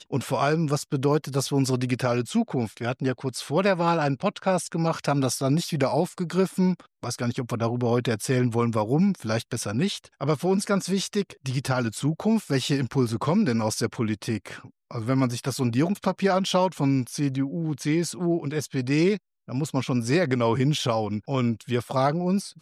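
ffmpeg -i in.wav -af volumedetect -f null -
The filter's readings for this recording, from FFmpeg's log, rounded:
mean_volume: -24.9 dB
max_volume: -10.6 dB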